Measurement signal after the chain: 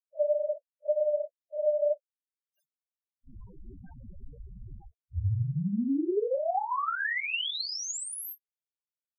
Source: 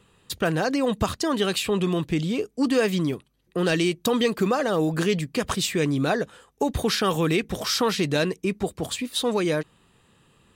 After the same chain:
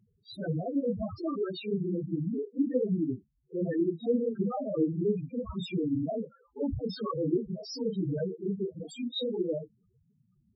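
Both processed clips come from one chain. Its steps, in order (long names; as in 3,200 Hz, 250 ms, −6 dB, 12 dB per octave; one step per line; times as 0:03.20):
random phases in long frames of 100 ms
spectral peaks only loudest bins 4
level −4.5 dB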